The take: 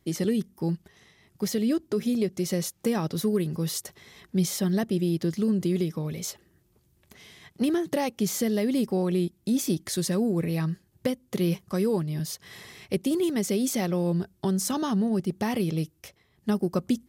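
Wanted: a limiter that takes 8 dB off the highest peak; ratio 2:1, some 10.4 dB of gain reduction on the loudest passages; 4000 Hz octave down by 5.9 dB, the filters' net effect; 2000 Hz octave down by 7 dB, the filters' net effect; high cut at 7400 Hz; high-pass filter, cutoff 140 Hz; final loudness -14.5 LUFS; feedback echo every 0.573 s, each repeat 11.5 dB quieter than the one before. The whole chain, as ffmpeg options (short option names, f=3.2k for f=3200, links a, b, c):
-af "highpass=140,lowpass=7.4k,equalizer=f=2k:t=o:g=-7,equalizer=f=4k:t=o:g=-5.5,acompressor=threshold=-41dB:ratio=2,alimiter=level_in=7dB:limit=-24dB:level=0:latency=1,volume=-7dB,aecho=1:1:573|1146|1719:0.266|0.0718|0.0194,volume=25.5dB"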